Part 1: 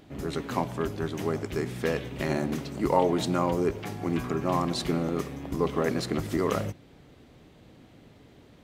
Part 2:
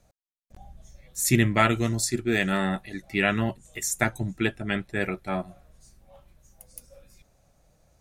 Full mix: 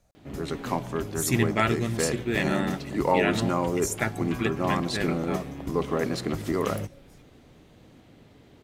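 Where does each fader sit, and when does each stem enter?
0.0, −3.5 decibels; 0.15, 0.00 seconds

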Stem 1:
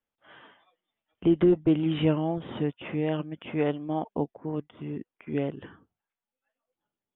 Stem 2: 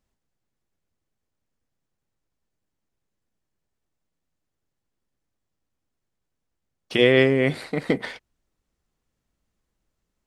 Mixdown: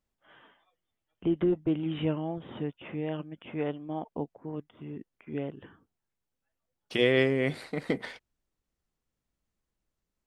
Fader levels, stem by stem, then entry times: −5.5, −7.0 decibels; 0.00, 0.00 seconds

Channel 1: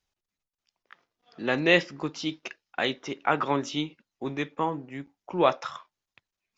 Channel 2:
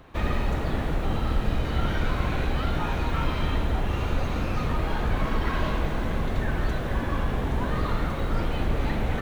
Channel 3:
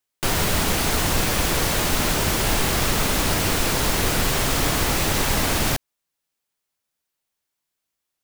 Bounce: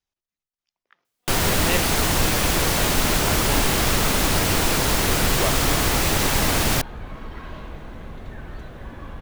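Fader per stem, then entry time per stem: −6.0, −10.0, +1.0 decibels; 0.00, 1.90, 1.05 seconds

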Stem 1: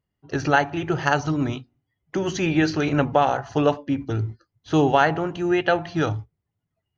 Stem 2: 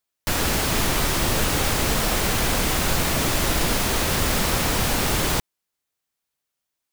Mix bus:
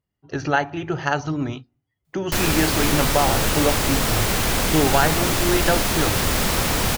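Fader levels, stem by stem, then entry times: −1.5, +1.0 decibels; 0.00, 2.05 seconds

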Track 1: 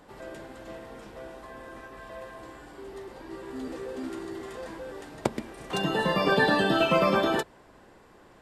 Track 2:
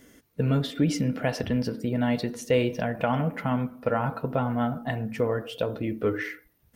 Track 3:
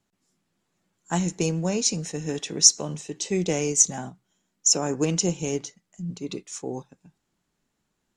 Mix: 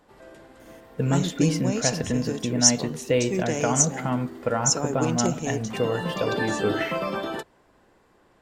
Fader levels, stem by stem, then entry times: −5.5, +0.5, −2.5 decibels; 0.00, 0.60, 0.00 seconds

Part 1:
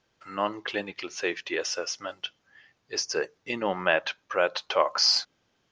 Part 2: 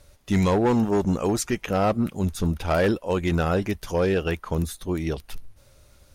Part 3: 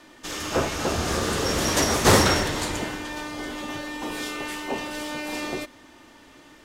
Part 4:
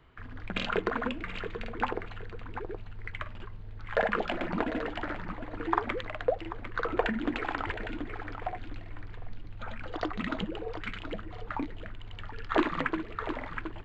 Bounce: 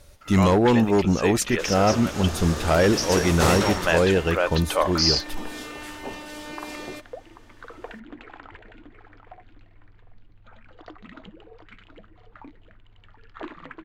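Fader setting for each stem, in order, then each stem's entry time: +1.0, +2.5, −6.0, −11.0 decibels; 0.00, 0.00, 1.35, 0.85 seconds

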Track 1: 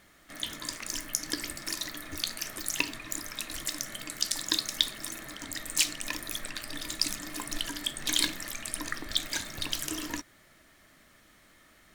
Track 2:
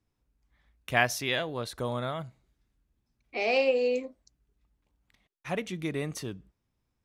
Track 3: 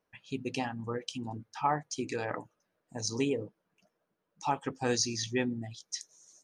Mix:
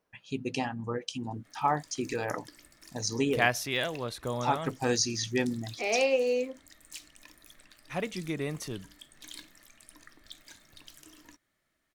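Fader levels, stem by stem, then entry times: −19.0, −1.0, +2.0 decibels; 1.15, 2.45, 0.00 seconds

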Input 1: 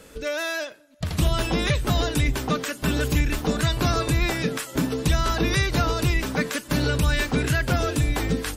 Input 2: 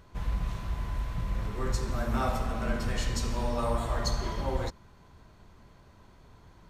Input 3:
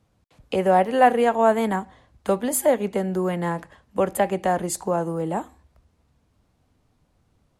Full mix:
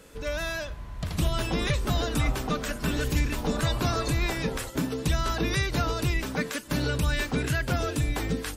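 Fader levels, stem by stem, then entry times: −4.5 dB, −6.0 dB, muted; 0.00 s, 0.00 s, muted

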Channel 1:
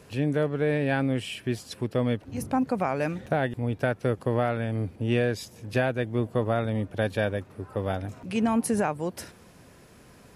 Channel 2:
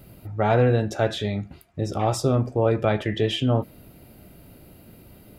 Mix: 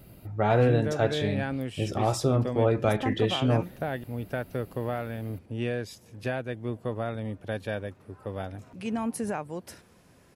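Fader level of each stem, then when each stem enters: −6.0, −3.0 decibels; 0.50, 0.00 seconds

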